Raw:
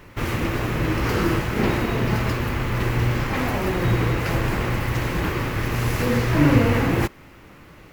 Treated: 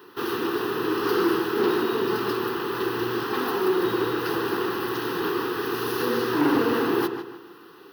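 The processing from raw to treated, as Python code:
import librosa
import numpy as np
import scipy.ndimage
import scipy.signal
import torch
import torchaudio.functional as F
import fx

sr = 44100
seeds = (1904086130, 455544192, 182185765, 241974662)

p1 = fx.highpass_res(x, sr, hz=400.0, q=4.9)
p2 = fx.high_shelf(p1, sr, hz=5900.0, db=5.0)
p3 = fx.fixed_phaser(p2, sr, hz=2200.0, stages=6)
p4 = p3 + fx.echo_filtered(p3, sr, ms=151, feedback_pct=37, hz=3600.0, wet_db=-8.5, dry=0)
y = fx.transformer_sat(p4, sr, knee_hz=580.0)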